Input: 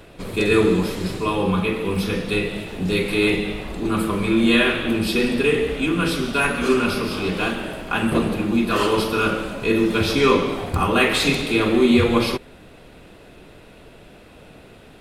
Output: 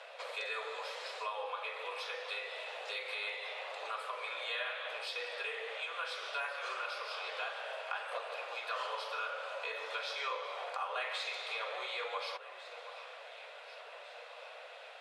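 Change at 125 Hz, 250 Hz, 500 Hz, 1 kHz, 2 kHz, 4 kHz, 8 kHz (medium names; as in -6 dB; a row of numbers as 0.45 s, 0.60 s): under -40 dB, under -40 dB, -22.0 dB, -13.5 dB, -15.0 dB, -14.5 dB, -21.5 dB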